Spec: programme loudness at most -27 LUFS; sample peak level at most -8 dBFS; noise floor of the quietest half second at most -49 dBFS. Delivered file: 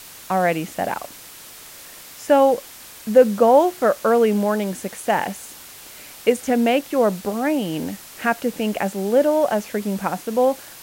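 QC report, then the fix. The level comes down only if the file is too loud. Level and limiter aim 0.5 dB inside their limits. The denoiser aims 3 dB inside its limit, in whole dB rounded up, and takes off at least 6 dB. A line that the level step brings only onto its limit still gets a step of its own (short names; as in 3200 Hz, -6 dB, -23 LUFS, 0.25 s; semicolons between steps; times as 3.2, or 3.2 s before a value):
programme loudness -20.0 LUFS: fail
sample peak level -2.5 dBFS: fail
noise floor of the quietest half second -41 dBFS: fail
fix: denoiser 6 dB, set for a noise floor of -41 dBFS; gain -7.5 dB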